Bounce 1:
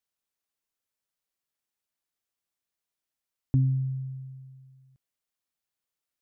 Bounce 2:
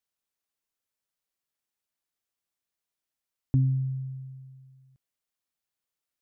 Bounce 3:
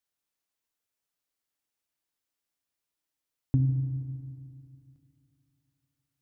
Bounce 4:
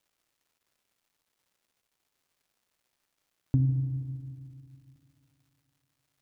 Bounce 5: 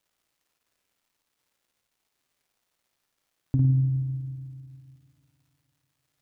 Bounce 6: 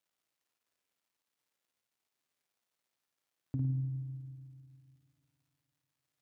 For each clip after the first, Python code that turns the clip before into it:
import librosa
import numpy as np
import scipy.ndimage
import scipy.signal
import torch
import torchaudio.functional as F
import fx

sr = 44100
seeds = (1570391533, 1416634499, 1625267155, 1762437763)

y1 = x
y2 = fx.rev_fdn(y1, sr, rt60_s=2.5, lf_ratio=1.2, hf_ratio=1.0, size_ms=20.0, drr_db=6.5)
y3 = fx.dmg_crackle(y2, sr, seeds[0], per_s=440.0, level_db=-63.0)
y4 = fx.room_flutter(y3, sr, wall_m=9.1, rt60_s=0.5)
y5 = fx.highpass(y4, sr, hz=130.0, slope=6)
y5 = y5 * librosa.db_to_amplitude(-9.0)